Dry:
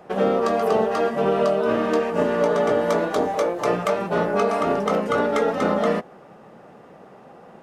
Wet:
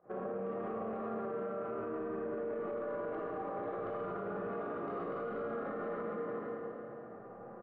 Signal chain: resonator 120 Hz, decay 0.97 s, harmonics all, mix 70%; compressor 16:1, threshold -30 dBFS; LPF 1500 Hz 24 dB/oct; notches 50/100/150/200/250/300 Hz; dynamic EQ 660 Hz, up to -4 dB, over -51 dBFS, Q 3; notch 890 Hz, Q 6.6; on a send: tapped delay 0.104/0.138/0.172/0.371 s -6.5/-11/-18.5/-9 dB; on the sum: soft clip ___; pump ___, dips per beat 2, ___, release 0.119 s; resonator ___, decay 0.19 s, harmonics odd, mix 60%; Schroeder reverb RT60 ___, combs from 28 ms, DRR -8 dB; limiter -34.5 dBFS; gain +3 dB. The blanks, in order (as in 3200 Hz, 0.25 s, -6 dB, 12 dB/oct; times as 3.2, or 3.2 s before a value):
-25.5 dBFS, 151 bpm, -16 dB, 110 Hz, 2.6 s